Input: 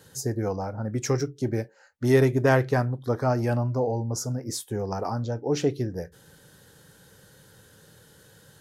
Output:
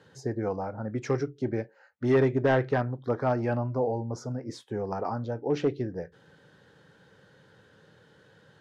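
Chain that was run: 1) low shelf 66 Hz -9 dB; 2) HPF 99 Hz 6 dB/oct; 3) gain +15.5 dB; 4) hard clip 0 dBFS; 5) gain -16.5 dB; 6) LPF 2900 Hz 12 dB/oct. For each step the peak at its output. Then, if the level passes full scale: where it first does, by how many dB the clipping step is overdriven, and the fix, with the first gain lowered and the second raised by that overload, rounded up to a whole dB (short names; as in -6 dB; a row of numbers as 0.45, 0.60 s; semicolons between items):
-6.5, -7.0, +8.5, 0.0, -16.5, -16.0 dBFS; step 3, 8.5 dB; step 3 +6.5 dB, step 5 -7.5 dB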